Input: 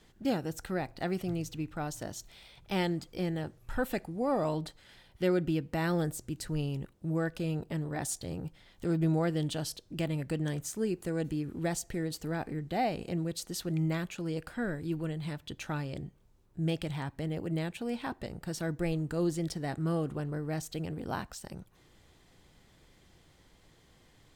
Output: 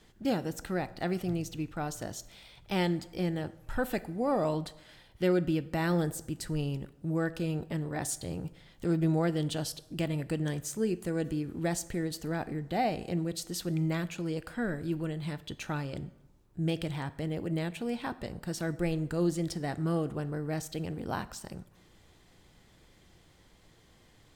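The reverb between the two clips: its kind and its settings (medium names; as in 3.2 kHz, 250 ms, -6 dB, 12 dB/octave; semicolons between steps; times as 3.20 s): plate-style reverb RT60 0.96 s, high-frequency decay 0.7×, DRR 15 dB; trim +1 dB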